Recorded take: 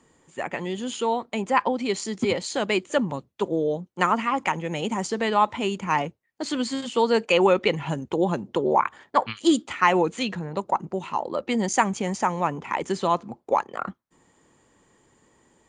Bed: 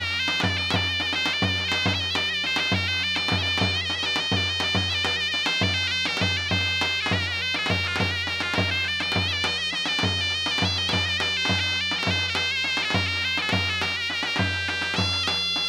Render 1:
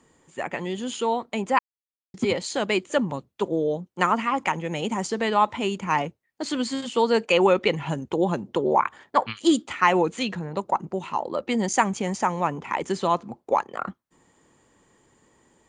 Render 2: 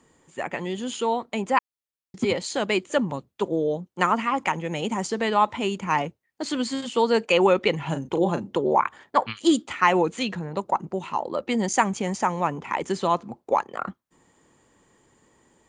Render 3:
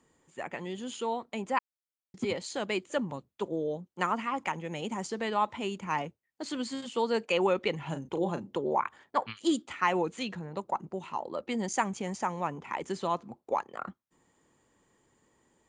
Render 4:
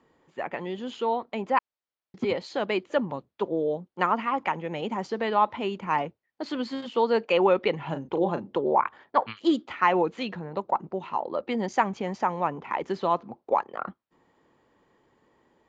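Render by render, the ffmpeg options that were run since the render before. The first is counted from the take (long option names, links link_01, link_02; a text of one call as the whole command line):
ffmpeg -i in.wav -filter_complex "[0:a]asplit=3[link_01][link_02][link_03];[link_01]atrim=end=1.59,asetpts=PTS-STARTPTS,afade=type=out:start_time=1.586:duration=0.004:curve=hsin[link_04];[link_02]atrim=start=1.59:end=2.14,asetpts=PTS-STARTPTS,volume=0[link_05];[link_03]atrim=start=2.14,asetpts=PTS-STARTPTS,afade=type=in:duration=0.004:curve=hsin[link_06];[link_04][link_05][link_06]concat=n=3:v=0:a=1" out.wav
ffmpeg -i in.wav -filter_complex "[0:a]asettb=1/sr,asplit=3[link_01][link_02][link_03];[link_01]atrim=end=7.864[link_04];[link_02]atrim=start=7.86:end=8.57,asetpts=PTS-STARTPTS,afade=type=in:duration=0.004:curve=qsin,afade=type=out:start_time=0.706:duration=0.004:curve=qsin,asplit=2[link_05][link_06];[link_06]adelay=36,volume=-9dB[link_07];[link_05][link_07]amix=inputs=2:normalize=0,atrim=end_sample=31311[link_08];[link_03]atrim=start=8.566[link_09];[link_04][link_08]acrossfade=duration=0.004:curve1=hsin:curve2=qsin[link_10];[link_10][link_09]acrossfade=duration=0.004:curve1=qsin:curve2=hsin" out.wav
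ffmpeg -i in.wav -af "volume=-8dB" out.wav
ffmpeg -i in.wav -af "lowpass=frequency=5100:width=0.5412,lowpass=frequency=5100:width=1.3066,equalizer=frequency=680:width=0.38:gain=6.5" out.wav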